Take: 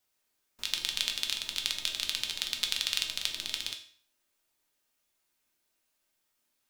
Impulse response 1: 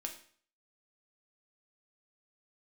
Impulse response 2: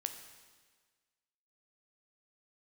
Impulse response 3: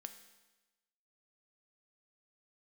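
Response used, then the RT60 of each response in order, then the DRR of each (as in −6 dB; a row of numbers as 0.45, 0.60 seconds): 1; 0.50, 1.5, 1.1 seconds; 2.0, 6.5, 7.5 decibels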